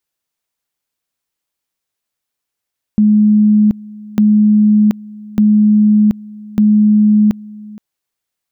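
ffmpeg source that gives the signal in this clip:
-f lavfi -i "aevalsrc='pow(10,(-6-22.5*gte(mod(t,1.2),0.73))/20)*sin(2*PI*211*t)':d=4.8:s=44100"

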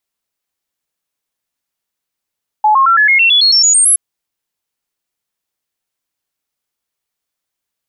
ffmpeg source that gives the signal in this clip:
-f lavfi -i "aevalsrc='0.501*clip(min(mod(t,0.11),0.11-mod(t,0.11))/0.005,0,1)*sin(2*PI*854*pow(2,floor(t/0.11)/3)*mod(t,0.11))':d=1.32:s=44100"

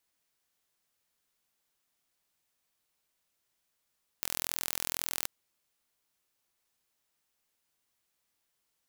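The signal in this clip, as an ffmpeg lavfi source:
-f lavfi -i "aevalsrc='0.531*eq(mod(n,1050),0)':d=1.04:s=44100"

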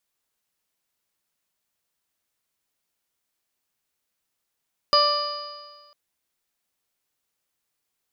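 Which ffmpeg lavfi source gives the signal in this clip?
-f lavfi -i "aevalsrc='0.1*pow(10,-3*t/1.51)*sin(2*PI*587.38*t)+0.141*pow(10,-3*t/1.51)*sin(2*PI*1177.05*t)+0.0178*pow(10,-3*t/1.51)*sin(2*PI*1771.27*t)+0.0119*pow(10,-3*t/1.51)*sin(2*PI*2372.29*t)+0.0398*pow(10,-3*t/1.51)*sin(2*PI*2982.31*t)+0.0119*pow(10,-3*t/1.51)*sin(2*PI*3603.47*t)+0.0266*pow(10,-3*t/1.51)*sin(2*PI*4237.85*t)+0.15*pow(10,-3*t/1.51)*sin(2*PI*4887.45*t)':d=1:s=44100"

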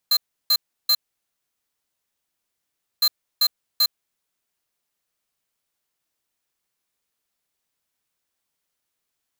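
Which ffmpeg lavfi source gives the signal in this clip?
-f lavfi -i "aevalsrc='0.141*(2*lt(mod(4120*t,1),0.5)-1)*clip(min(mod(mod(t,2.91),0.39),0.06-mod(mod(t,2.91),0.39))/0.005,0,1)*lt(mod(t,2.91),1.17)':d=5.82:s=44100"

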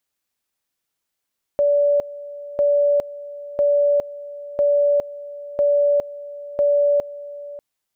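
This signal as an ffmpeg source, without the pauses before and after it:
-f lavfi -i "aevalsrc='pow(10,(-13.5-17.5*gte(mod(t,1),0.41))/20)*sin(2*PI*577*t)':d=6:s=44100"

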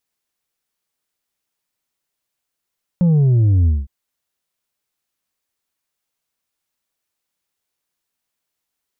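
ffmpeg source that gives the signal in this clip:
-f lavfi -i "aevalsrc='0.282*clip((0.86-t)/0.2,0,1)*tanh(1.58*sin(2*PI*180*0.86/log(65/180)*(exp(log(65/180)*t/0.86)-1)))/tanh(1.58)':d=0.86:s=44100"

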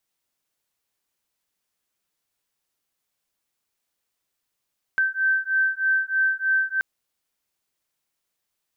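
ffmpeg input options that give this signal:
-f lavfi -i "aevalsrc='0.075*(sin(2*PI*1550*t)+sin(2*PI*1553.2*t))':d=1.83:s=44100"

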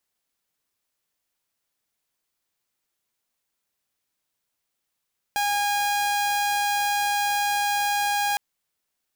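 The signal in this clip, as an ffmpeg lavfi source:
-f lavfi -i "aevalsrc='0.112*(2*mod(818*t,1)-1)':d=3.01:s=44100"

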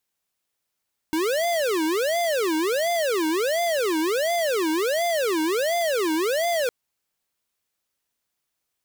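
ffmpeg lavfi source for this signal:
-f lavfi -i "aevalsrc='0.0708*(2*lt(mod((502.5*t-191.5/(2*PI*1.4)*sin(2*PI*1.4*t)),1),0.5)-1)':d=5.56:s=44100"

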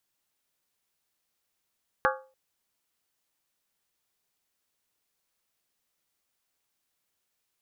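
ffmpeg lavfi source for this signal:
-f lavfi -i "aevalsrc='0.0708*pow(10,-3*t/0.38)*sin(2*PI*526*t)+0.0668*pow(10,-3*t/0.301)*sin(2*PI*838.4*t)+0.0631*pow(10,-3*t/0.26)*sin(2*PI*1123.5*t)+0.0596*pow(10,-3*t/0.251)*sin(2*PI*1207.7*t)+0.0562*pow(10,-3*t/0.233)*sin(2*PI*1395.5*t)+0.0531*pow(10,-3*t/0.222)*sin(2*PI*1534.9*t)+0.0501*pow(10,-3*t/0.214)*sin(2*PI*1660.1*t)':d=0.29:s=44100"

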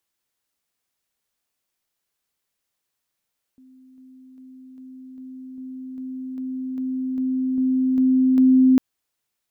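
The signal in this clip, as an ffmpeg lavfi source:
-f lavfi -i "aevalsrc='pow(10,(-47+3*floor(t/0.4))/20)*sin(2*PI*259*t)':d=5.2:s=44100"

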